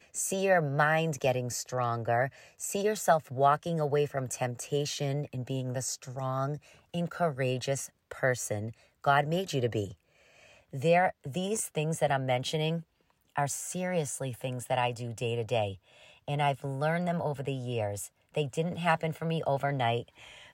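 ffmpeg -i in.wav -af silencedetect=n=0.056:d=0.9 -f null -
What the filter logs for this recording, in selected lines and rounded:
silence_start: 9.82
silence_end: 10.84 | silence_duration: 1.02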